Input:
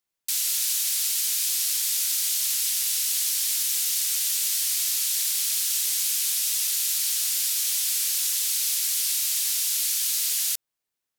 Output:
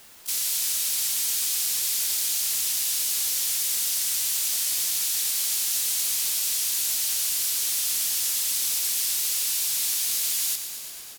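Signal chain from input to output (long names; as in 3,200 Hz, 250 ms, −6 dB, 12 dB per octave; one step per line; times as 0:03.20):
hard clipping −20.5 dBFS, distortion −17 dB
pitch-shifted copies added −5 semitones −16 dB, −4 semitones −17 dB, +4 semitones −7 dB
bit-depth reduction 8 bits, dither triangular
slap from a distant wall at 100 metres, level −11 dB
feedback echo at a low word length 114 ms, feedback 80%, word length 8 bits, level −10.5 dB
level −1.5 dB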